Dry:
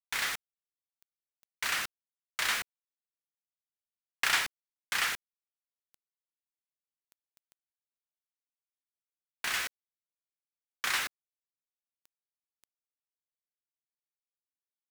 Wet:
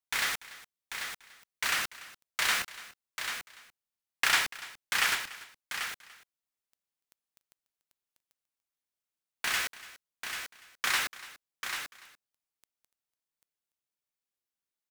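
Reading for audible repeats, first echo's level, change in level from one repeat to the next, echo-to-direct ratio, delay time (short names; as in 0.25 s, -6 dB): 3, -18.5 dB, no steady repeat, -7.0 dB, 0.29 s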